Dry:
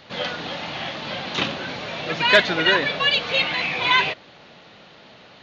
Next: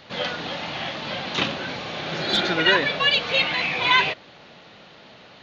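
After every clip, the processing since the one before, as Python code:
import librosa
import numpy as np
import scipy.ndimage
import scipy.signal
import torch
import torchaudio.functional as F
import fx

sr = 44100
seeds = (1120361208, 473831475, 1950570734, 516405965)

y = fx.spec_repair(x, sr, seeds[0], start_s=1.85, length_s=0.61, low_hz=260.0, high_hz=3100.0, source='both')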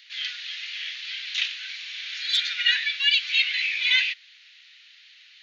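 y = scipy.signal.sosfilt(scipy.signal.butter(6, 1900.0, 'highpass', fs=sr, output='sos'), x)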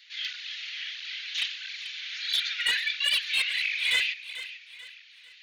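y = np.clip(10.0 ** (17.0 / 20.0) * x, -1.0, 1.0) / 10.0 ** (17.0 / 20.0)
y = fx.echo_feedback(y, sr, ms=442, feedback_pct=39, wet_db=-13.5)
y = fx.flanger_cancel(y, sr, hz=1.5, depth_ms=6.5)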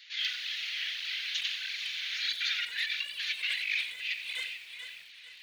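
y = fx.over_compress(x, sr, threshold_db=-31.0, ratio=-0.5)
y = fx.echo_crushed(y, sr, ms=88, feedback_pct=35, bits=8, wet_db=-11)
y = y * librosa.db_to_amplitude(-1.5)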